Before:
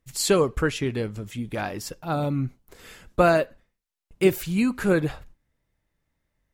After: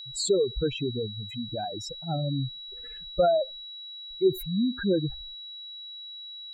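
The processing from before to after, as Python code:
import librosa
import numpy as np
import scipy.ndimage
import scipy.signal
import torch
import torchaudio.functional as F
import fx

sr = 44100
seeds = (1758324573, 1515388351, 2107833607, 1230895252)

y = fx.spec_expand(x, sr, power=3.4)
y = y + 10.0 ** (-36.0 / 20.0) * np.sin(2.0 * np.pi * 3900.0 * np.arange(len(y)) / sr)
y = y * 10.0 ** (-3.0 / 20.0)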